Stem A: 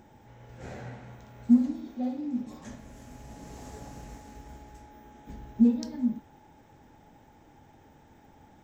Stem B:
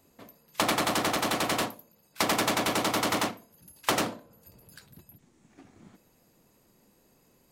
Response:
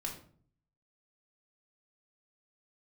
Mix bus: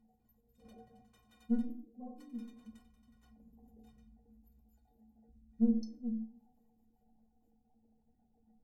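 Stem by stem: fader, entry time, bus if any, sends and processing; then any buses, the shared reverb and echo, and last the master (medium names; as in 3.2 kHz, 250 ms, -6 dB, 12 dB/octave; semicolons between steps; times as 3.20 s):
+1.0 dB, 0.00 s, send -3 dB, resonances exaggerated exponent 3; valve stage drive 16 dB, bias 0.4
-15.0 dB, 0.00 s, send -3.5 dB, compression 4:1, threshold -38 dBFS, peak gain reduction 14 dB; trance gate ".x.xx.x.x...." 186 bpm -12 dB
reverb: on, RT60 0.50 s, pre-delay 3 ms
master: flange 0.98 Hz, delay 0.9 ms, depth 4 ms, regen -54%; inharmonic resonator 220 Hz, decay 0.28 s, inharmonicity 0.03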